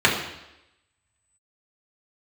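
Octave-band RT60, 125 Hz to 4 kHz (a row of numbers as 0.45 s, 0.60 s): 0.80 s, 0.90 s, 0.90 s, 0.90 s, 0.90 s, 0.90 s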